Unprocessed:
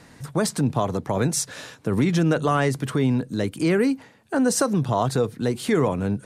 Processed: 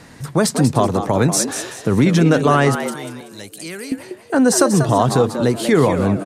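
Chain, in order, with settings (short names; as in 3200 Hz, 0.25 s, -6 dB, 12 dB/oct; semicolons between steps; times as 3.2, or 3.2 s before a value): 2.75–3.92 pre-emphasis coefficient 0.9; frequency-shifting echo 0.19 s, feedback 33%, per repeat +100 Hz, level -9 dB; gain +6.5 dB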